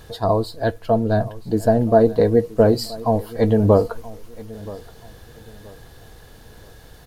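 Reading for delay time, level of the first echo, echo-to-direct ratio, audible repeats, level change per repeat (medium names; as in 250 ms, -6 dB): 976 ms, -19.5 dB, -19.0 dB, 2, -10.0 dB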